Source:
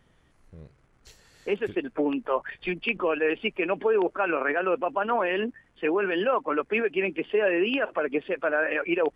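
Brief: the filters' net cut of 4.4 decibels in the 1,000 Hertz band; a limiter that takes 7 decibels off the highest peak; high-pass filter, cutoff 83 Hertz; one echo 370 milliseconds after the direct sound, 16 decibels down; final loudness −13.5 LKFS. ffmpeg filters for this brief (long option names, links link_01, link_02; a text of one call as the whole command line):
ffmpeg -i in.wav -af "highpass=83,equalizer=frequency=1000:width_type=o:gain=-6,alimiter=limit=-20dB:level=0:latency=1,aecho=1:1:370:0.158,volume=16.5dB" out.wav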